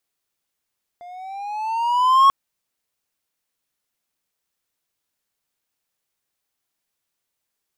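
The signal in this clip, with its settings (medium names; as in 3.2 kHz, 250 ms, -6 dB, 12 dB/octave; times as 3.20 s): gliding synth tone triangle, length 1.29 s, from 697 Hz, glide +8 st, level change +28 dB, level -6.5 dB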